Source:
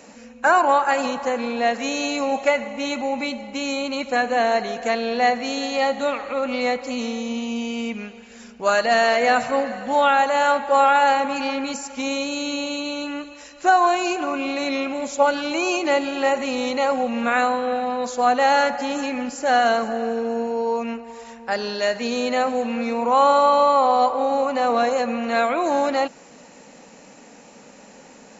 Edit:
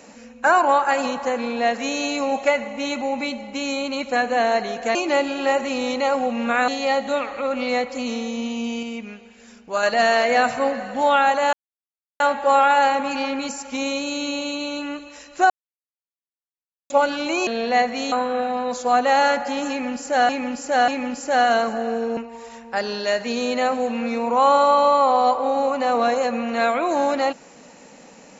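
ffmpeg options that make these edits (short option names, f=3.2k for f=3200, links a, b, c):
-filter_complex "[0:a]asplit=13[a][b][c][d][e][f][g][h][i][j][k][l][m];[a]atrim=end=4.952[n];[b]atrim=start=15.718:end=17.452[o];[c]atrim=start=5.598:end=7.752[p];[d]atrim=start=7.748:end=8.752,asetpts=PTS-STARTPTS,volume=-4dB[q];[e]atrim=start=8.748:end=10.45,asetpts=PTS-STARTPTS,afade=t=out:st=1.698:d=0.004:c=hsin,apad=pad_dur=0.67[r];[f]atrim=start=10.45:end=13.75,asetpts=PTS-STARTPTS,afade=t=in:d=0.004:c=hsin,afade=t=out:st=3.296:d=0.004:c=hsin[s];[g]atrim=start=13.75:end=15.15,asetpts=PTS-STARTPTS,volume=0[t];[h]atrim=start=15.15:end=15.722,asetpts=PTS-STARTPTS,afade=t=in:d=0.004:c=hsin[u];[i]atrim=start=4.948:end=5.602[v];[j]atrim=start=17.448:end=19.622[w];[k]atrim=start=19.028:end=19.622[x];[l]atrim=start=19.028:end=20.322[y];[m]atrim=start=20.918[z];[n][o]acrossfade=d=0.004:c1=hsin:c2=hsin[aa];[aa][p]acrossfade=d=0.004:c1=hsin:c2=hsin[ab];[ab][q]acrossfade=d=0.004:c1=hsin:c2=hsin[ac];[r][s][t][u]concat=n=4:v=0:a=1[ad];[ac][ad]acrossfade=d=0.004:c1=hsin:c2=hsin[ae];[ae][v]acrossfade=d=0.004:c1=hsin:c2=hsin[af];[af][w]acrossfade=d=0.004:c1=hsin:c2=hsin[ag];[ag][x]acrossfade=d=0.004:c1=hsin:c2=hsin[ah];[ah][y]acrossfade=d=0.004:c1=hsin:c2=hsin[ai];[ai][z]acrossfade=d=0.004:c1=hsin:c2=hsin"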